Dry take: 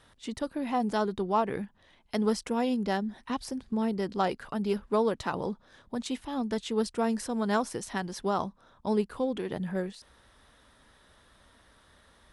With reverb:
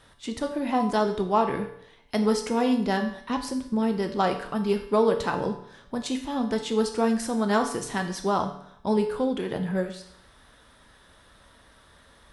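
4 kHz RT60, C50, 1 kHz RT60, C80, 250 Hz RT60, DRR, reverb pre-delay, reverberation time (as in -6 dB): 0.65 s, 9.0 dB, 0.65 s, 11.5 dB, 0.65 s, 4.5 dB, 7 ms, 0.65 s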